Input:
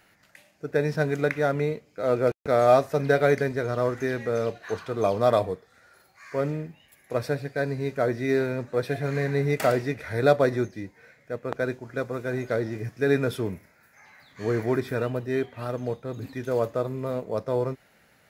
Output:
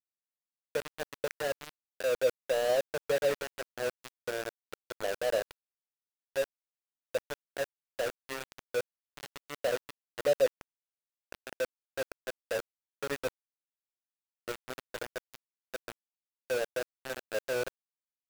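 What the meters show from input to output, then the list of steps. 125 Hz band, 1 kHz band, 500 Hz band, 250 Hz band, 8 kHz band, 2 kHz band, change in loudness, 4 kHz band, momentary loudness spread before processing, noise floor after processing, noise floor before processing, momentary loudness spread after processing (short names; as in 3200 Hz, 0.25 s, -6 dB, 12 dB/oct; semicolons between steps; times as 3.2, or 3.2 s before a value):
-24.5 dB, -13.0 dB, -8.5 dB, -19.5 dB, +2.0 dB, -7.0 dB, -8.5 dB, -0.5 dB, 12 LU, under -85 dBFS, -61 dBFS, 17 LU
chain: vocal tract filter e; sample gate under -29.5 dBFS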